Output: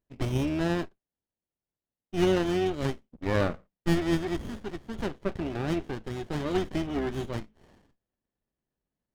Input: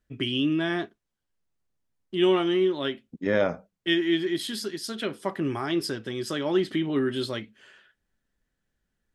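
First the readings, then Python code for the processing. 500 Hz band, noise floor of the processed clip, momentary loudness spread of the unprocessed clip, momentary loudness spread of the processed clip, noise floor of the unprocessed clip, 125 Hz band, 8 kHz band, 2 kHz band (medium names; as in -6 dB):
-4.0 dB, under -85 dBFS, 9 LU, 11 LU, -81 dBFS, +4.5 dB, -4.5 dB, -5.0 dB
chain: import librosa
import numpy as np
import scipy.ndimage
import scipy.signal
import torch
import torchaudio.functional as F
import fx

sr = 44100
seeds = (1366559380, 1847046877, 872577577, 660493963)

p1 = fx.octave_divider(x, sr, octaves=2, level_db=-4.0)
p2 = fx.tilt_eq(p1, sr, slope=2.5)
p3 = fx.quant_dither(p2, sr, seeds[0], bits=6, dither='none')
p4 = p2 + (p3 * 10.0 ** (-10.0 / 20.0))
p5 = fx.brickwall_lowpass(p4, sr, high_hz=3600.0)
p6 = fx.running_max(p5, sr, window=33)
y = p6 * 10.0 ** (-2.5 / 20.0)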